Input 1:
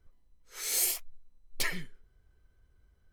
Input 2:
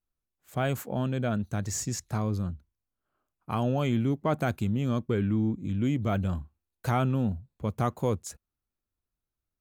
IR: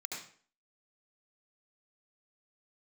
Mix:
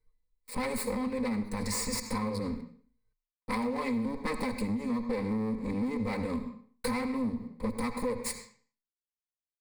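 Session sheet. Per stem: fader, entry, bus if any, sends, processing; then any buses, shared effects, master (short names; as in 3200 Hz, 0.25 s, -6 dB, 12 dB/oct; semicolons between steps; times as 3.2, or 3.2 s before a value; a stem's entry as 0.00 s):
-14.0 dB, 0.00 s, no send, comb 6.5 ms, depth 100%; auto duck -12 dB, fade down 0.60 s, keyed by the second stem
-3.5 dB, 0.00 s, send -7 dB, minimum comb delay 3.9 ms; gate with hold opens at -51 dBFS; sample leveller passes 3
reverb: on, RT60 0.45 s, pre-delay 67 ms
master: ripple EQ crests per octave 0.93, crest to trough 15 dB; compressor, threshold -29 dBFS, peak gain reduction 10.5 dB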